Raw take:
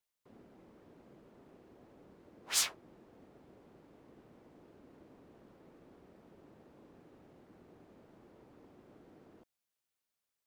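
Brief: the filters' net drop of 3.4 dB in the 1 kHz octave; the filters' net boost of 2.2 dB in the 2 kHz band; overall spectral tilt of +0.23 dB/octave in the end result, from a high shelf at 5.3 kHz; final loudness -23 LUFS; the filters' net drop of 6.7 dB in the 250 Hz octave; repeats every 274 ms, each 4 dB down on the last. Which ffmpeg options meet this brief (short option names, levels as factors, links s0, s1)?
-af "equalizer=f=250:t=o:g=-9,equalizer=f=1000:t=o:g=-5.5,equalizer=f=2000:t=o:g=3.5,highshelf=f=5300:g=3.5,aecho=1:1:274|548|822|1096|1370|1644|1918|2192|2466:0.631|0.398|0.25|0.158|0.0994|0.0626|0.0394|0.0249|0.0157,volume=3.35"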